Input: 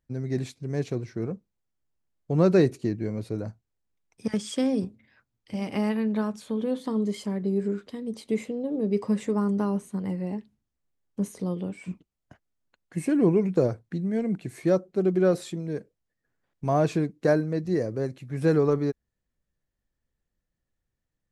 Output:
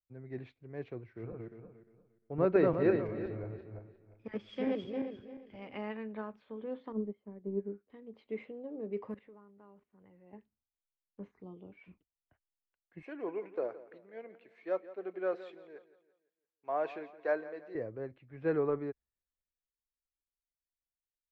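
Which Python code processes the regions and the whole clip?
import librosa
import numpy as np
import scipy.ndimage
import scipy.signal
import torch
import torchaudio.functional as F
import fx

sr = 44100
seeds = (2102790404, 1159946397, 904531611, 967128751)

y = fx.chain(x, sr, fx.reverse_delay_fb(ms=176, feedback_pct=56, wet_db=-1.0),
    fx.echo_single(ms=321, db=-15.5), at=(0.97, 5.76))
y = fx.chain(y, sr, fx.highpass(hz=61.0, slope=12),
    fx.tilt_shelf(db=8.5, hz=740.0),
    fx.upward_expand(threshold_db=-28.0, expansion=2.5), at=(6.92, 7.9))
y = fx.chain(y, sr, fx.block_float(bits=7),
    fx.resample_bad(factor=4, down='filtered', up='zero_stuff'),
    fx.level_steps(step_db=16), at=(9.1, 10.33))
y = fx.chain(y, sr, fx.env_phaser(low_hz=400.0, high_hz=1700.0, full_db=-32.5),
    fx.notch(hz=530.0, q=7.4), at=(11.31, 11.72))
y = fx.chain(y, sr, fx.highpass(hz=470.0, slope=12),
    fx.high_shelf(hz=8500.0, db=12.0),
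    fx.echo_feedback(ms=170, feedback_pct=55, wet_db=-14.5), at=(13.02, 17.75))
y = scipy.signal.sosfilt(scipy.signal.butter(4, 2700.0, 'lowpass', fs=sr, output='sos'), y)
y = fx.peak_eq(y, sr, hz=170.0, db=-10.0, octaves=1.4)
y = fx.band_widen(y, sr, depth_pct=40)
y = y * 10.0 ** (-8.5 / 20.0)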